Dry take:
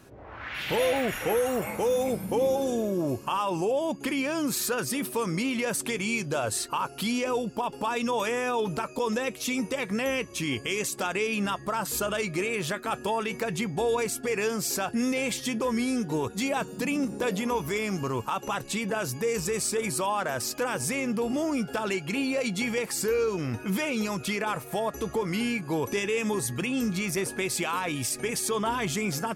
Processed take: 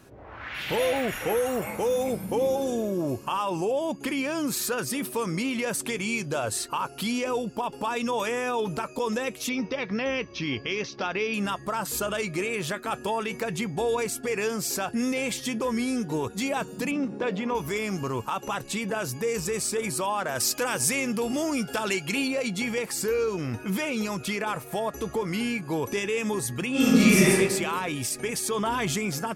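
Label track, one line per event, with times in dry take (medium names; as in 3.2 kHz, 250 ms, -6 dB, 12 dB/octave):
9.490000	11.340000	steep low-pass 5.8 kHz 72 dB/octave
16.910000	17.550000	band-pass 100–3400 Hz
20.350000	22.280000	treble shelf 2.2 kHz +7.5 dB
26.710000	27.310000	reverb throw, RT60 1.3 s, DRR -11 dB
28.580000	28.980000	level flattener amount 50%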